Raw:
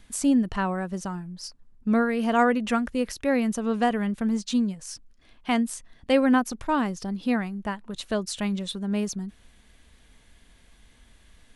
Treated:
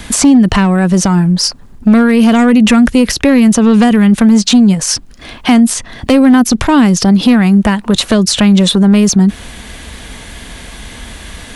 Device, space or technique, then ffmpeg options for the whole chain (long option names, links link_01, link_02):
mastering chain: -filter_complex "[0:a]highpass=frequency=48:poles=1,equalizer=frequency=800:width_type=o:width=0.77:gain=1.5,acrossover=split=320|2000|6400[link_01][link_02][link_03][link_04];[link_01]acompressor=threshold=-24dB:ratio=4[link_05];[link_02]acompressor=threshold=-37dB:ratio=4[link_06];[link_03]acompressor=threshold=-41dB:ratio=4[link_07];[link_04]acompressor=threshold=-49dB:ratio=4[link_08];[link_05][link_06][link_07][link_08]amix=inputs=4:normalize=0,acompressor=threshold=-34dB:ratio=1.5,asoftclip=type=tanh:threshold=-23dB,asoftclip=type=hard:threshold=-26.5dB,alimiter=level_in=30dB:limit=-1dB:release=50:level=0:latency=1,volume=-1dB"